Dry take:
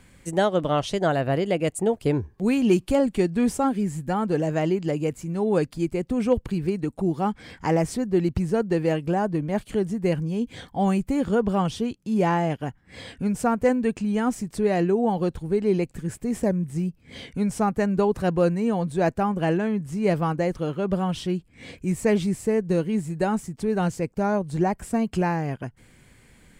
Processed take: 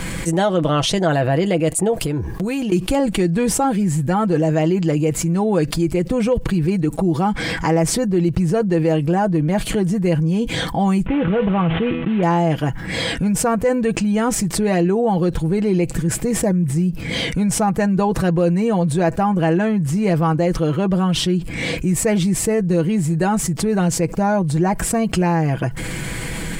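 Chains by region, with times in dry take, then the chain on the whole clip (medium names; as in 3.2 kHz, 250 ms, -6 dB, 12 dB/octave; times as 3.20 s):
1.94–2.72 s: treble shelf 9.3 kHz +6 dB + compression 4:1, threshold -37 dBFS
11.06–12.23 s: CVSD coder 16 kbps + feedback comb 82 Hz, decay 0.24 s, mix 50% + level flattener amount 50%
whole clip: comb 6.1 ms, depth 52%; level flattener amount 70%; trim -1 dB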